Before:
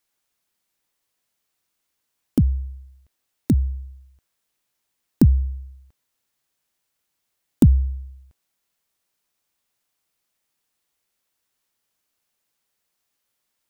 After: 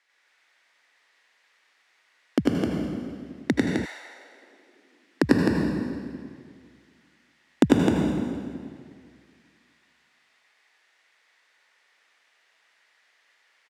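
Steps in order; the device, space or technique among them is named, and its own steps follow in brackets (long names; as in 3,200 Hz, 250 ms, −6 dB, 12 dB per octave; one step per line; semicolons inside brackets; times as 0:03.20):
station announcement (band-pass filter 500–4,300 Hz; parametric band 1,900 Hz +11 dB 0.56 octaves; loudspeakers that aren't time-aligned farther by 33 metres 0 dB, 89 metres −4 dB; convolution reverb RT60 2.0 s, pre-delay 75 ms, DRR −0.5 dB)
0:03.84–0:05.22: high-pass filter 830 Hz → 250 Hz 24 dB per octave
level +8 dB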